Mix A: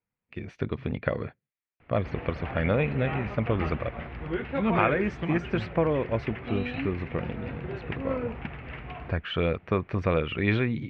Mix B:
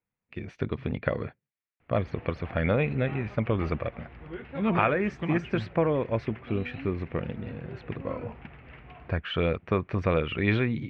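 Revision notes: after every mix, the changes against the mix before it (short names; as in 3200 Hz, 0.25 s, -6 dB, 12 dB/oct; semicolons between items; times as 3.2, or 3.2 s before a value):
background -8.5 dB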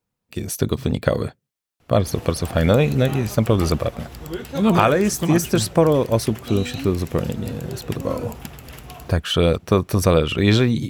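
background: remove air absorption 160 m; master: remove ladder low-pass 2600 Hz, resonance 50%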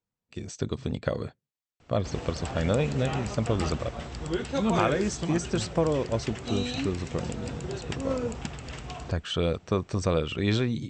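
speech -9.5 dB; master: add brick-wall FIR low-pass 8300 Hz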